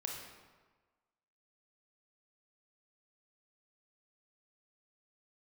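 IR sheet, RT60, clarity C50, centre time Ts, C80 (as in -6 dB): 1.4 s, 2.5 dB, 59 ms, 4.5 dB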